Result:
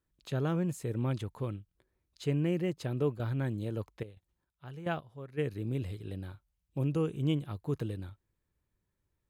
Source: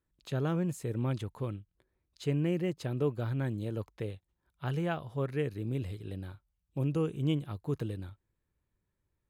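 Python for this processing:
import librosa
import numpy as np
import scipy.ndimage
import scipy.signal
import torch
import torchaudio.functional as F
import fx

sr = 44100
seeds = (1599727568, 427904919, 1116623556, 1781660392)

y = fx.step_gate(x, sr, bpm=108, pattern='...x...xxxxxx.xx', floor_db=-12.0, edge_ms=4.5, at=(3.17, 5.37), fade=0.02)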